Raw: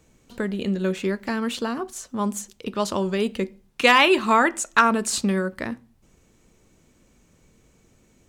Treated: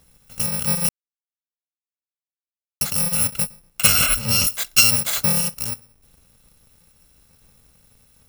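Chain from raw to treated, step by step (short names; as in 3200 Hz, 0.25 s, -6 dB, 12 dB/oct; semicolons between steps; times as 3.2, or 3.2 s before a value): FFT order left unsorted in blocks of 128 samples; 0.89–2.81 mute; 3.87–4.47 tilt -1.5 dB/oct; gain +3 dB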